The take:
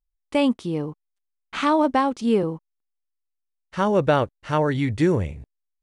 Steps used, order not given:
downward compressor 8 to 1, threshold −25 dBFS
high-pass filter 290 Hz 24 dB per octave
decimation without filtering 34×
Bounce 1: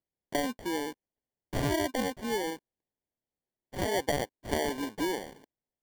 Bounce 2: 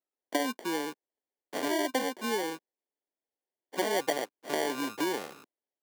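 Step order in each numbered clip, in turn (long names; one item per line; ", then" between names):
downward compressor, then high-pass filter, then decimation without filtering
downward compressor, then decimation without filtering, then high-pass filter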